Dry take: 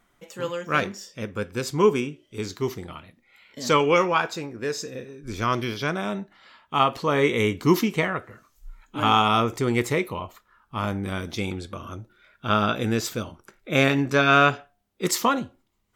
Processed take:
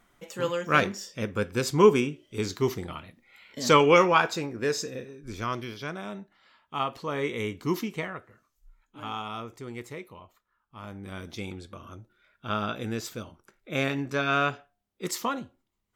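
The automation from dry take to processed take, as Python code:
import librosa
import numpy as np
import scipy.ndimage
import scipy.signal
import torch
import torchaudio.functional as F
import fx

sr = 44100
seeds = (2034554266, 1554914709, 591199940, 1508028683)

y = fx.gain(x, sr, db=fx.line((4.74, 1.0), (5.67, -9.0), (7.98, -9.0), (9.0, -16.0), (10.78, -16.0), (11.23, -8.0)))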